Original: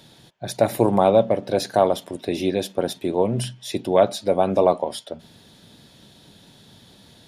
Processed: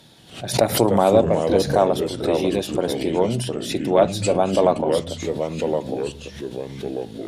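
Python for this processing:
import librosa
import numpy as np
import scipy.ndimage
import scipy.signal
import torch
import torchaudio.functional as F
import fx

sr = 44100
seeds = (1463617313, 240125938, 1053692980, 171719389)

y = fx.echo_pitch(x, sr, ms=183, semitones=-3, count=3, db_per_echo=-6.0)
y = fx.cheby_harmonics(y, sr, harmonics=(4,), levels_db=(-30,), full_scale_db=-2.0)
y = fx.pre_swell(y, sr, db_per_s=120.0)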